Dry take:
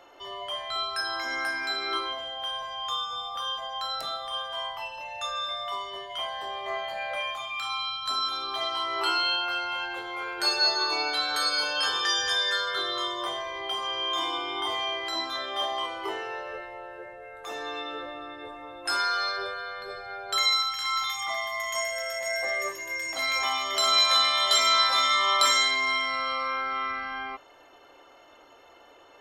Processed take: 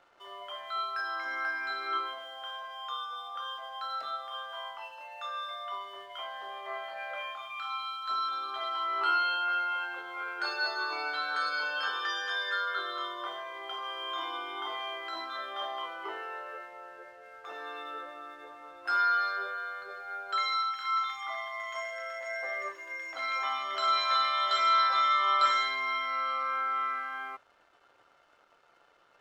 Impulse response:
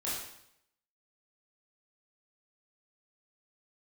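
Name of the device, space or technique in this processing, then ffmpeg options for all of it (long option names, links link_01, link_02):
pocket radio on a weak battery: -af "highpass=340,lowpass=3200,aeval=exprs='sgn(val(0))*max(abs(val(0))-0.00126,0)':channel_layout=same,equalizer=frequency=1400:width_type=o:width=0.37:gain=9.5,volume=-6.5dB"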